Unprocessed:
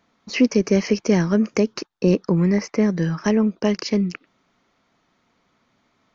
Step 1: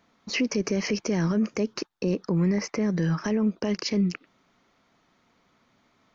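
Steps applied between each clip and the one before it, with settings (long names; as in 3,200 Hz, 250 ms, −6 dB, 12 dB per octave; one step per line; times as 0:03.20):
brickwall limiter −17 dBFS, peak gain reduction 11 dB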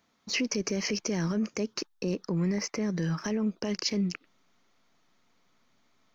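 high-shelf EQ 3,800 Hz +9.5 dB
in parallel at −9 dB: slack as between gear wheels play −35.5 dBFS
on the sum: level −7.5 dB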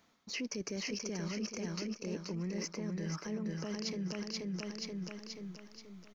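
repeating echo 481 ms, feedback 43%, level −4 dB
reversed playback
downward compressor 4 to 1, threshold −40 dBFS, peak gain reduction 14.5 dB
reversed playback
level +2 dB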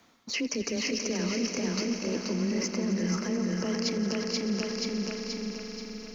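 frequency shifter +17 Hz
on a send: echo that builds up and dies away 87 ms, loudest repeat 5, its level −14 dB
on the sum: level +8 dB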